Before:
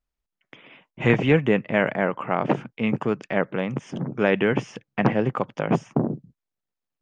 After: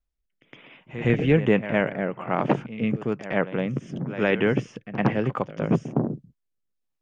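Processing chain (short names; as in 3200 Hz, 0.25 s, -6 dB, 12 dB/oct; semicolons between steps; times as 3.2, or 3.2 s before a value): reverse echo 0.112 s -13 dB; rotary speaker horn 1.1 Hz; low shelf 69 Hz +8 dB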